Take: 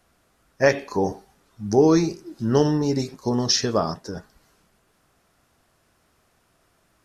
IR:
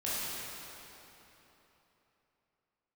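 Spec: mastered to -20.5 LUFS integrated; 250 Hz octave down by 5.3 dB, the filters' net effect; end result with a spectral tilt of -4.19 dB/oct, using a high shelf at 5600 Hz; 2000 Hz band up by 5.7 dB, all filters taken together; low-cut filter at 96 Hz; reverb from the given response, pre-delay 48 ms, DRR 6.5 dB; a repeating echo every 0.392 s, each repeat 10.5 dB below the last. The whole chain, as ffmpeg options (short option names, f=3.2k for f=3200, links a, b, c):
-filter_complex "[0:a]highpass=96,equalizer=f=250:t=o:g=-7.5,equalizer=f=2k:t=o:g=7,highshelf=f=5.6k:g=-3,aecho=1:1:392|784|1176:0.299|0.0896|0.0269,asplit=2[a][b];[1:a]atrim=start_sample=2205,adelay=48[c];[b][c]afir=irnorm=-1:irlink=0,volume=-13.5dB[d];[a][d]amix=inputs=2:normalize=0,volume=2.5dB"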